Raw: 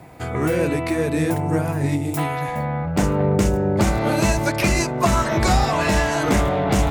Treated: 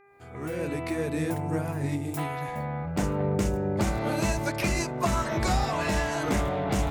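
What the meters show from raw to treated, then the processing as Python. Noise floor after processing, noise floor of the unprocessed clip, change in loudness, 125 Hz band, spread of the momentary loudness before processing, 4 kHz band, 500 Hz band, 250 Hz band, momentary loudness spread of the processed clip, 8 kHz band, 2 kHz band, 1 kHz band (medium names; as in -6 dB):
-42 dBFS, -26 dBFS, -8.0 dB, -8.0 dB, 5 LU, -8.0 dB, -8.5 dB, -8.0 dB, 6 LU, -8.0 dB, -8.0 dB, -8.0 dB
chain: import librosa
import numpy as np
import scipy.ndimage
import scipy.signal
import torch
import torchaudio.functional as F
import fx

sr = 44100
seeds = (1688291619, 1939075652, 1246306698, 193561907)

y = fx.fade_in_head(x, sr, length_s=0.86)
y = fx.dmg_buzz(y, sr, base_hz=400.0, harmonics=6, level_db=-50.0, tilt_db=-4, odd_only=False)
y = y * librosa.db_to_amplitude(-8.0)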